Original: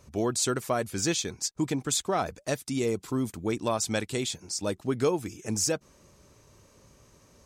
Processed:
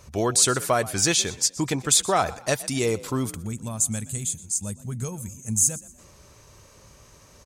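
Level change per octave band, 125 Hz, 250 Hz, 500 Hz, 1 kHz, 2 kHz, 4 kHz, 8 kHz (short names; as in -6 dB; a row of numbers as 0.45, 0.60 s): +5.0, +0.5, +1.5, +5.5, +5.5, +6.0, +9.0 dB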